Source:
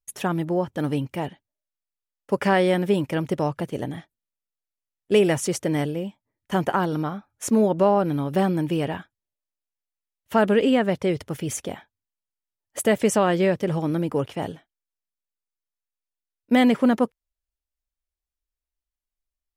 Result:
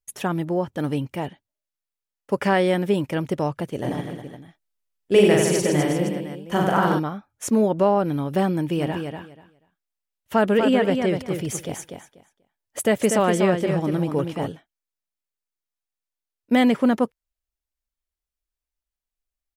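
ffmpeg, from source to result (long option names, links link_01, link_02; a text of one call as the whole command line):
ffmpeg -i in.wav -filter_complex "[0:a]asplit=3[link_01][link_02][link_03];[link_01]afade=type=out:start_time=3.83:duration=0.02[link_04];[link_02]aecho=1:1:40|92|159.6|247.5|361.7|510.2:0.794|0.631|0.501|0.398|0.316|0.251,afade=type=in:start_time=3.83:duration=0.02,afade=type=out:start_time=6.98:duration=0.02[link_05];[link_03]afade=type=in:start_time=6.98:duration=0.02[link_06];[link_04][link_05][link_06]amix=inputs=3:normalize=0,asplit=3[link_07][link_08][link_09];[link_07]afade=type=out:start_time=8.77:duration=0.02[link_10];[link_08]aecho=1:1:243|486|729:0.501|0.0902|0.0162,afade=type=in:start_time=8.77:duration=0.02,afade=type=out:start_time=14.48:duration=0.02[link_11];[link_09]afade=type=in:start_time=14.48:duration=0.02[link_12];[link_10][link_11][link_12]amix=inputs=3:normalize=0" out.wav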